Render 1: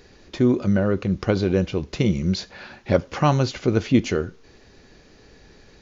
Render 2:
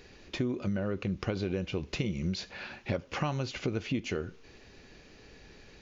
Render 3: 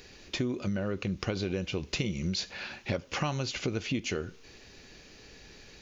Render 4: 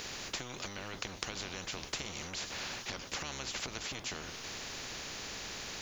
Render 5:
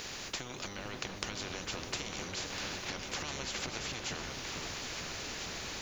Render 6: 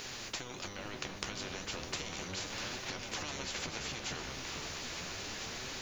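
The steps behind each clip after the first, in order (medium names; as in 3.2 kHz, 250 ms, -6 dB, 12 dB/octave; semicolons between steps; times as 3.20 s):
peaking EQ 2.6 kHz +6 dB 0.64 oct; compression 10:1, threshold -24 dBFS, peak gain reduction 13 dB; trim -4 dB
treble shelf 3.6 kHz +10 dB
octave divider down 1 oct, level 0 dB; compression 2.5:1, threshold -32 dBFS, peak gain reduction 6 dB; spectrum-flattening compressor 4:1; trim +2.5 dB
delay with an opening low-pass 451 ms, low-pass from 750 Hz, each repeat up 2 oct, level -3 dB
flange 0.35 Hz, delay 7.4 ms, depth 8.5 ms, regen +56%; trim +3 dB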